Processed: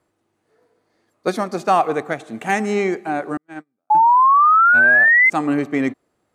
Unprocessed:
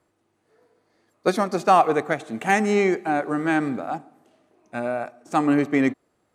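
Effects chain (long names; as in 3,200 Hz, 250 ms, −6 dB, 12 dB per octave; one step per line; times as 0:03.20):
0:03.37–0:03.95: noise gate −17 dBFS, range −49 dB
0:03.90–0:05.30: sound drawn into the spectrogram rise 840–2,100 Hz −12 dBFS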